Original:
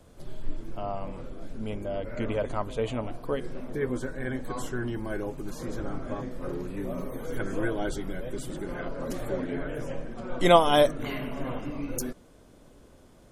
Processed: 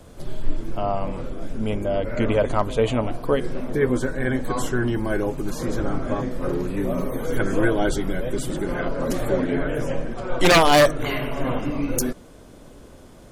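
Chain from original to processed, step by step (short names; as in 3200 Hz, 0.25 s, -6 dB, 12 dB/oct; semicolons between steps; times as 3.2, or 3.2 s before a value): 1.33–1.93 notch 4200 Hz, Q 8; 10.13–11.44 bell 220 Hz -12 dB 0.44 oct; wavefolder -17 dBFS; gain +9 dB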